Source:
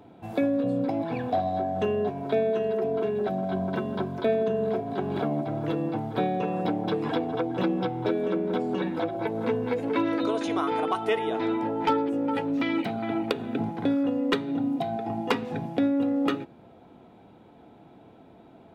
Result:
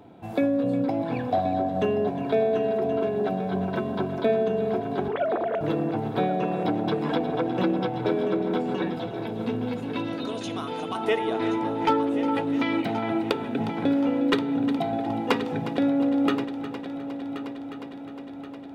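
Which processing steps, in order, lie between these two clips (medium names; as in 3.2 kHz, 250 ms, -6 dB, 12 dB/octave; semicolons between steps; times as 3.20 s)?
5.08–5.61 s: formants replaced by sine waves; 8.95–10.95 s: time-frequency box 270–2500 Hz -8 dB; multi-head delay 359 ms, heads first and third, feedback 66%, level -13.5 dB; trim +1.5 dB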